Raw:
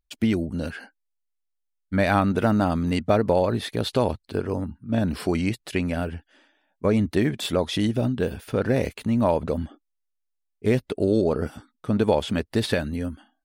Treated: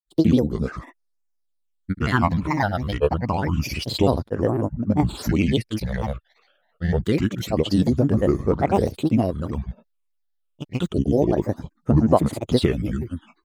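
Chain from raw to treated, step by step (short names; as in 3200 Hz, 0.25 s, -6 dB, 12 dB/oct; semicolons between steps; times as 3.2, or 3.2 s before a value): phaser stages 8, 0.27 Hz, lowest notch 280–3900 Hz; grains, pitch spread up and down by 7 st; gain +5 dB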